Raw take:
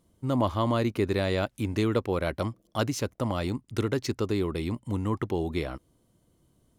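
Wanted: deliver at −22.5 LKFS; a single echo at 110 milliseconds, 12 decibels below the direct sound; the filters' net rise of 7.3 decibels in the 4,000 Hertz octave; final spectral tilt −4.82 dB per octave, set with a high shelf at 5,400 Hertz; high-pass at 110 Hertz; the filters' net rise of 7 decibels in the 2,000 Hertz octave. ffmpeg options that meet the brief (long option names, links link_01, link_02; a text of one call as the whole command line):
ffmpeg -i in.wav -af "highpass=110,equalizer=frequency=2000:width_type=o:gain=7,equalizer=frequency=4000:width_type=o:gain=5,highshelf=frequency=5400:gain=4.5,aecho=1:1:110:0.251,volume=5.5dB" out.wav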